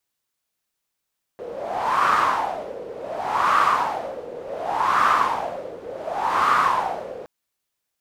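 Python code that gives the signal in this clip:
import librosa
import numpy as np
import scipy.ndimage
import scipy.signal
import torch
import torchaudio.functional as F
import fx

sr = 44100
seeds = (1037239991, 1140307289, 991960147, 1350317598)

y = fx.wind(sr, seeds[0], length_s=5.87, low_hz=480.0, high_hz=1200.0, q=6.4, gusts=4, swing_db=17)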